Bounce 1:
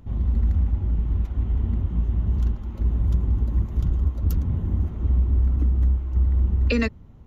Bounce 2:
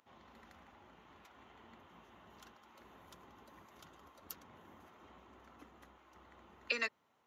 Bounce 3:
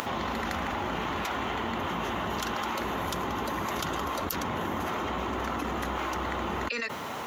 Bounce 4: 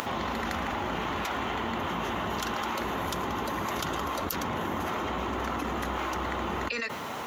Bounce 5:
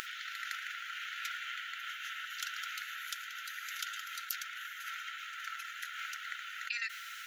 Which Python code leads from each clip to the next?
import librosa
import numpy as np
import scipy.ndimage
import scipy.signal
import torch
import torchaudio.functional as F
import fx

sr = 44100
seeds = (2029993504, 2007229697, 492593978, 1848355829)

y1 = scipy.signal.sosfilt(scipy.signal.butter(2, 890.0, 'highpass', fs=sr, output='sos'), x)
y1 = y1 * 10.0 ** (-6.0 / 20.0)
y2 = fx.env_flatten(y1, sr, amount_pct=100)
y3 = y2 + 10.0 ** (-19.5 / 20.0) * np.pad(y2, (int(113 * sr / 1000.0), 0))[:len(y2)]
y4 = fx.brickwall_highpass(y3, sr, low_hz=1300.0)
y4 = y4 * 10.0 ** (-3.5 / 20.0)